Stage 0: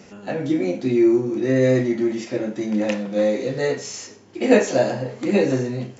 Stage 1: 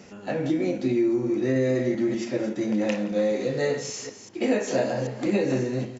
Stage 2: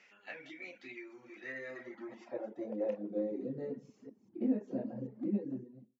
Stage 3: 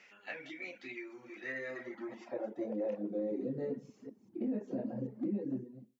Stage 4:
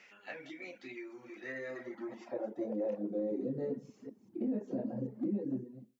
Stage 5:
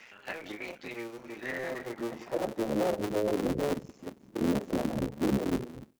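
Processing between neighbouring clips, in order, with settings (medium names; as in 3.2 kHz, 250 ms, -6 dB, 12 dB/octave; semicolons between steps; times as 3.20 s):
chunks repeated in reverse 195 ms, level -11 dB; delay 174 ms -21.5 dB; compression 10:1, threshold -17 dBFS, peak gain reduction 9 dB; trim -2 dB
fade out at the end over 0.81 s; reverb removal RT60 0.75 s; band-pass sweep 2.2 kHz -> 230 Hz, 1.34–3.56 s; trim -3.5 dB
peak limiter -31 dBFS, peak gain reduction 10 dB; trim +3 dB
dynamic bell 2.4 kHz, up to -5 dB, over -58 dBFS, Q 0.94; trim +1 dB
cycle switcher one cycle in 3, muted; trim +8 dB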